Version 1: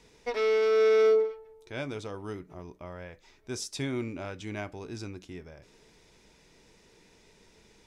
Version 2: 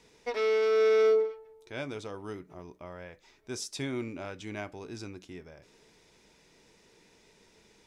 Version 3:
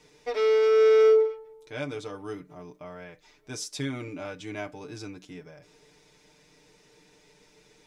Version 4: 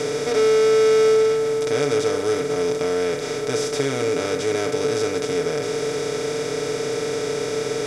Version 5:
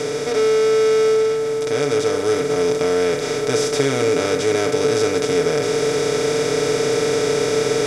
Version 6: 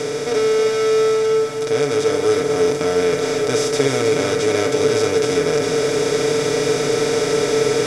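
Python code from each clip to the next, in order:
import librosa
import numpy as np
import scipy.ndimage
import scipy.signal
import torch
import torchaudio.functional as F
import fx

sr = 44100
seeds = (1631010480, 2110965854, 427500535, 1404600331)

y1 = fx.low_shelf(x, sr, hz=94.0, db=-8.0)
y1 = F.gain(torch.from_numpy(y1), -1.0).numpy()
y2 = y1 + 0.83 * np.pad(y1, (int(6.7 * sr / 1000.0), 0))[:len(y1)]
y3 = fx.bin_compress(y2, sr, power=0.2)
y3 = F.gain(torch.from_numpy(y3), 1.5).numpy()
y4 = fx.rider(y3, sr, range_db=10, speed_s=2.0)
y4 = F.gain(torch.from_numpy(y4), 2.5).numpy()
y5 = y4 + 10.0 ** (-6.5 / 20.0) * np.pad(y4, (int(316 * sr / 1000.0), 0))[:len(y4)]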